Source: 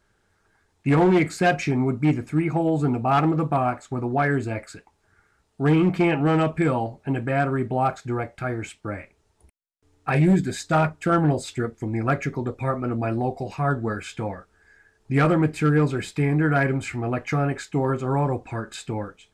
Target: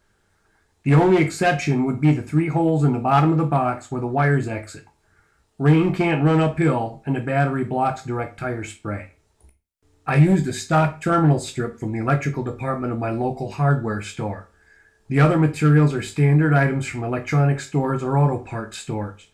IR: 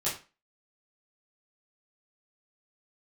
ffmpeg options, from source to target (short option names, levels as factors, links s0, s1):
-filter_complex "[0:a]asplit=2[s0][s1];[s1]highshelf=f=5800:g=10[s2];[1:a]atrim=start_sample=2205,lowshelf=f=90:g=11[s3];[s2][s3]afir=irnorm=-1:irlink=0,volume=0.211[s4];[s0][s4]amix=inputs=2:normalize=0"